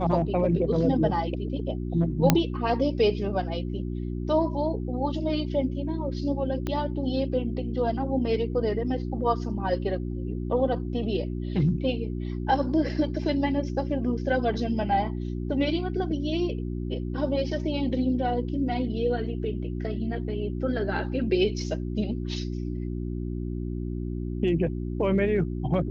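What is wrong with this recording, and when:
hum 60 Hz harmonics 6 -31 dBFS
2.30 s: pop -3 dBFS
6.67 s: pop -17 dBFS

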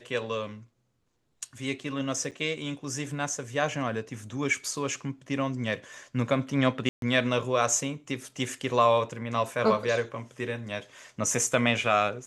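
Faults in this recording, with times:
2.31–2.32 s: dropout 7.2 ms
6.89–7.02 s: dropout 132 ms

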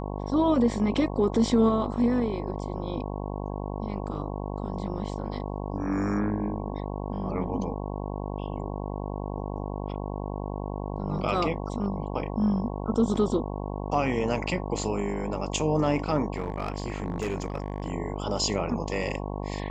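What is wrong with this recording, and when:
buzz 50 Hz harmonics 22 -33 dBFS
16.34–17.92 s: clipped -24 dBFS

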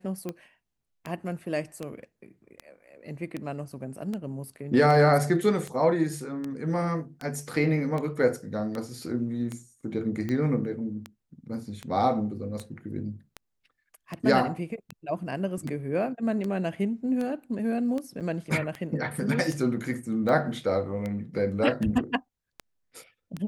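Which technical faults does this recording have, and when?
tick 78 rpm -20 dBFS
18.20–18.21 s: dropout 7.4 ms

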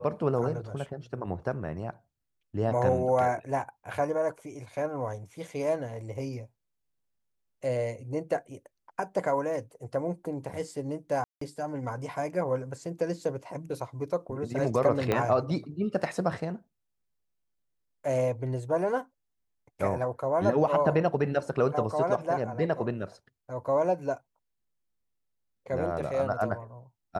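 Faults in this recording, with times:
11.24–11.41 s: dropout 174 ms
15.12 s: pop -13 dBFS

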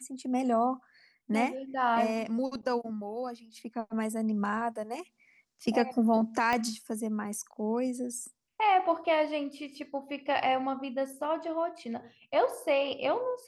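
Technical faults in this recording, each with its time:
6.53 s: pop -16 dBFS

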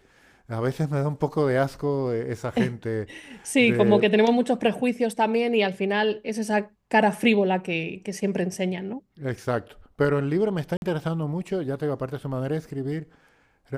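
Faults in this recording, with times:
10.77–10.82 s: dropout 51 ms

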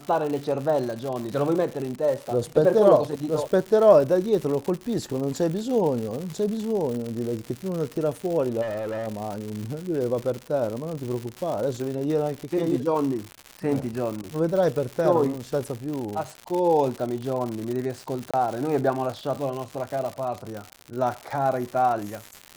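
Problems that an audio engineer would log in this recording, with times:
crackle 170 per s -29 dBFS
8.61–9.08 s: clipped -27 dBFS
18.31–18.34 s: dropout 26 ms

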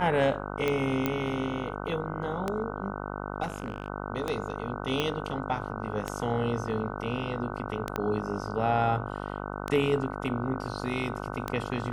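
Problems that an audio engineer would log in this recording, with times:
buzz 50 Hz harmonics 30 -36 dBFS
tick 33 1/3 rpm -15 dBFS
1.06 s: pop -13 dBFS
3.42–3.88 s: clipped -26.5 dBFS
5.00 s: pop -14 dBFS
7.96 s: pop -16 dBFS

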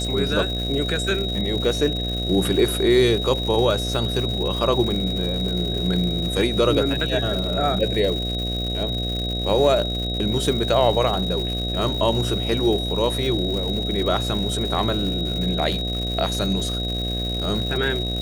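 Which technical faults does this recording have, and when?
buzz 60 Hz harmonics 12 -27 dBFS
crackle 220 per s -28 dBFS
whine 3.8 kHz -27 dBFS
7.44 s: dropout 2.3 ms

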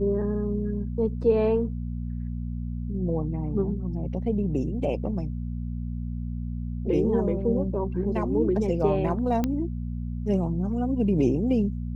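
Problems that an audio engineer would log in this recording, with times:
hum 60 Hz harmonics 4 -31 dBFS
9.44 s: pop -13 dBFS

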